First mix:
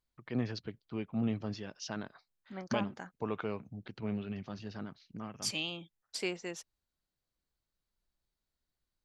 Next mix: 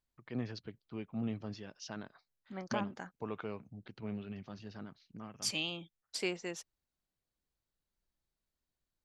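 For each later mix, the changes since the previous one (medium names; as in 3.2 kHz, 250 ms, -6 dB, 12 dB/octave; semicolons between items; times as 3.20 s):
first voice -4.5 dB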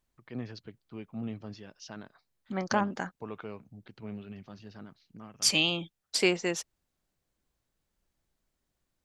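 second voice +10.5 dB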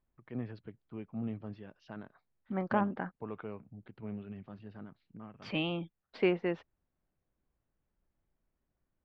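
second voice: add distance through air 200 m; master: add distance through air 470 m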